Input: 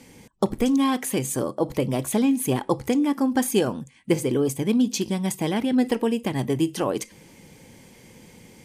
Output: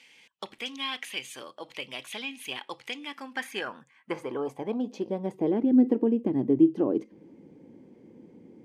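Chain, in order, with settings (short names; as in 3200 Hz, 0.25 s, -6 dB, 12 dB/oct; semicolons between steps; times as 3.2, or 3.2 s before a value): dynamic EQ 7800 Hz, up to -5 dB, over -48 dBFS, Q 2.2; band-pass sweep 2800 Hz -> 310 Hz, 3.08–5.75; gain +4.5 dB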